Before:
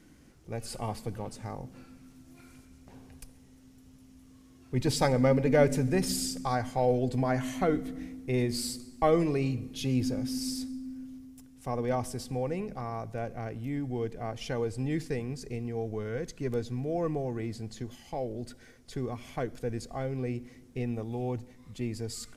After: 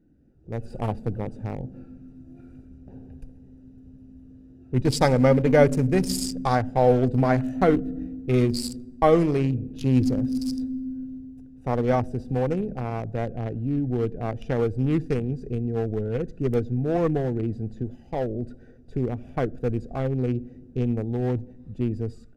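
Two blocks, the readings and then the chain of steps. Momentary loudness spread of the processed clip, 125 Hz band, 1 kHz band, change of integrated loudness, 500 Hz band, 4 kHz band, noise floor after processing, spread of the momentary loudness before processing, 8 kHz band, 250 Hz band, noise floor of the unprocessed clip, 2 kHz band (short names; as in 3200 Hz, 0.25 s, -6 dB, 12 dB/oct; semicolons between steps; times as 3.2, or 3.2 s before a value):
14 LU, +8.0 dB, +6.0 dB, +7.0 dB, +6.5 dB, +1.5 dB, -49 dBFS, 14 LU, -0.5 dB, +7.5 dB, -56 dBFS, +5.0 dB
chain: Wiener smoothing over 41 samples; AGC gain up to 12.5 dB; gain -3.5 dB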